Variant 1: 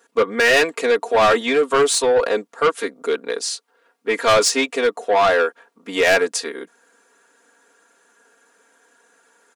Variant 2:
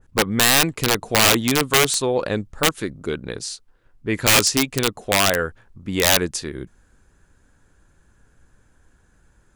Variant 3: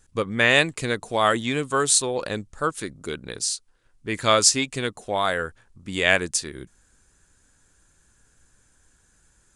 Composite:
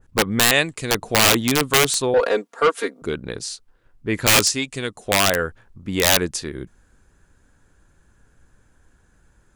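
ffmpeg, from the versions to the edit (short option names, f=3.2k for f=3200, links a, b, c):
-filter_complex "[2:a]asplit=2[a][b];[1:a]asplit=4[c][d][e][f];[c]atrim=end=0.512[g];[a]atrim=start=0.508:end=0.912[h];[d]atrim=start=0.908:end=2.142[i];[0:a]atrim=start=2.138:end=3.022[j];[e]atrim=start=3.018:end=4.502[k];[b]atrim=start=4.498:end=5.062[l];[f]atrim=start=5.058[m];[g][h]acrossfade=d=0.004:c1=hsin:c2=hsin[n];[n][i]acrossfade=d=0.004:c1=hsin:c2=hsin[o];[o][j]acrossfade=d=0.004:c1=hsin:c2=hsin[p];[p][k]acrossfade=d=0.004:c1=hsin:c2=hsin[q];[q][l]acrossfade=d=0.004:c1=hsin:c2=hsin[r];[r][m]acrossfade=d=0.004:c1=hsin:c2=hsin"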